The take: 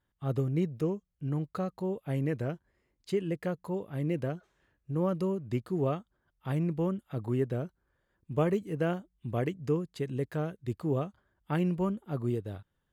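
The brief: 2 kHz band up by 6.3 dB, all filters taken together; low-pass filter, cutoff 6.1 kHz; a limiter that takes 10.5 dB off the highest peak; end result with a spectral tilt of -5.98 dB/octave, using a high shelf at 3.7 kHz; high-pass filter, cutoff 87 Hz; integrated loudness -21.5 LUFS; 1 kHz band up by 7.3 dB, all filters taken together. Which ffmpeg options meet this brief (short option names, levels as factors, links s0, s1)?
-af "highpass=87,lowpass=6100,equalizer=f=1000:t=o:g=8.5,equalizer=f=2000:t=o:g=6,highshelf=f=3700:g=-4,volume=3.98,alimiter=limit=0.376:level=0:latency=1"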